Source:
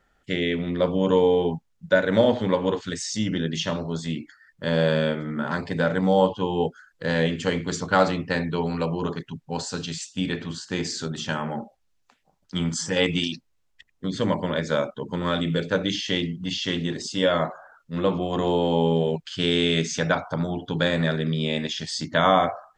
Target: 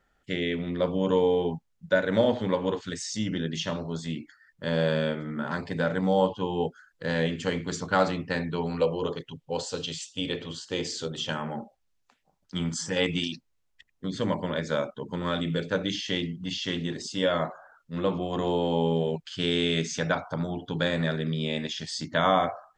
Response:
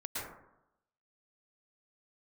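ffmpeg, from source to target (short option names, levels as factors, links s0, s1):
-filter_complex "[0:a]asettb=1/sr,asplit=3[s0][s1][s2];[s0]atrim=end=8.804[s3];[s1]atrim=start=8.8:end=11.3,asetpts=PTS-STARTPTS,afade=t=in:d=0.004:c=qsin,afade=t=out:st=2.496:d=0.004:c=qsin,equalizer=f=200:t=o:w=0.33:g=-11,equalizer=f=500:t=o:w=0.33:g=11,equalizer=f=1600:t=o:w=0.33:g=-6,equalizer=f=3150:t=o:w=0.33:g=8[s4];[s2]atrim=start=11.296[s5];[s3][s4]acrossfade=d=0.004:c1=hsin:c2=qsin[s6];[s6][s5]acrossfade=d=0.004:c1=qsin:c2=hsin,volume=0.631"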